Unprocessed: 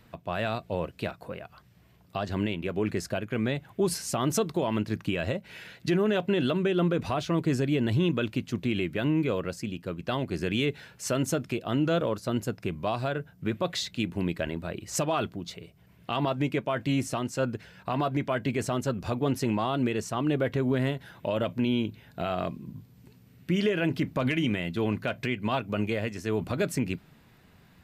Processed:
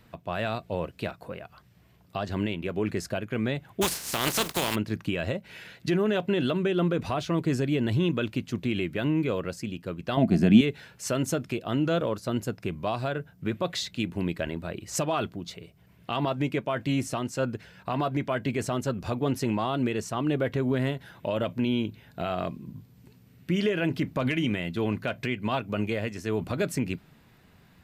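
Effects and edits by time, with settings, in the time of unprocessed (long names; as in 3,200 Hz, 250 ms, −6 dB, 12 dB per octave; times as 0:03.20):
0:03.81–0:04.74: compressing power law on the bin magnitudes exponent 0.35
0:10.17–0:10.61: hollow resonant body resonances 210/670 Hz, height 17 dB, ringing for 40 ms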